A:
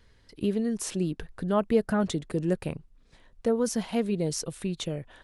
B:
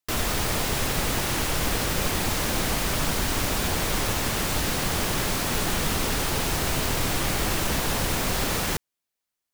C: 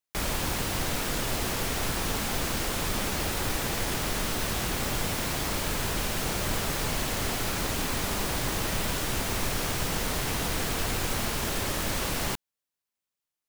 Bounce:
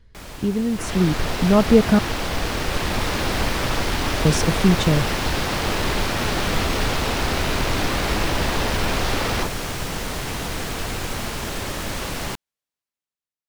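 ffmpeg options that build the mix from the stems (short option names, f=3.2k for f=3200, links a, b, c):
-filter_complex "[0:a]lowshelf=f=240:g=10.5,volume=-1.5dB,asplit=3[a][b][c];[a]atrim=end=1.99,asetpts=PTS-STARTPTS,afade=t=out:st=1.986:d=0.004:c=hsin[d];[b]atrim=start=1.99:end=4.25,asetpts=PTS-STARTPTS,volume=0[e];[c]atrim=start=4.25,asetpts=PTS-STARTPTS,afade=t=in:d=0.004:c=hsin[f];[d][e][f]concat=n=3:v=0:a=1[g];[1:a]afwtdn=0.02,equalizer=f=160:w=1.5:g=-4.5,adelay=700,volume=-6.5dB[h];[2:a]volume=-8dB[i];[g][h][i]amix=inputs=3:normalize=0,dynaudnorm=f=260:g=7:m=10.5dB,highshelf=f=9.2k:g=-7.5"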